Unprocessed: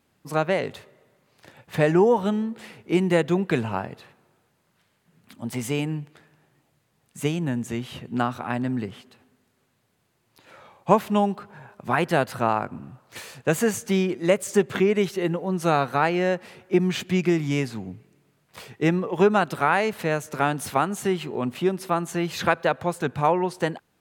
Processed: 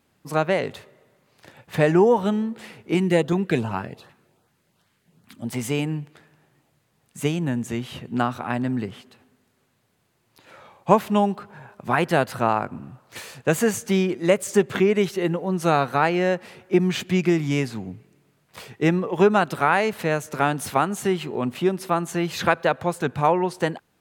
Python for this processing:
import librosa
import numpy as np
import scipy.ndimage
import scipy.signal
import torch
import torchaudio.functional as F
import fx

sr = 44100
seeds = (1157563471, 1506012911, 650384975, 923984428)

y = fx.filter_lfo_notch(x, sr, shape='saw_up', hz=2.6, low_hz=410.0, high_hz=2800.0, q=1.7, at=(2.94, 5.48))
y = y * 10.0 ** (1.5 / 20.0)